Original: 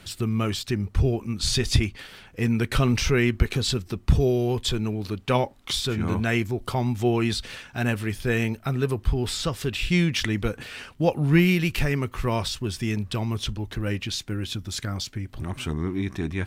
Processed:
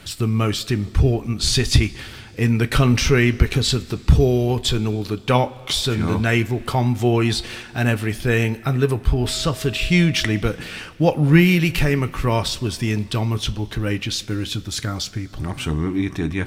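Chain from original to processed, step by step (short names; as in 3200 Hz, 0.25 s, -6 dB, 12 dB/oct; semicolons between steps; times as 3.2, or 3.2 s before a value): 9.11–10.39 whine 640 Hz -42 dBFS; two-slope reverb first 0.22 s, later 2.6 s, from -18 dB, DRR 10.5 dB; gain +5 dB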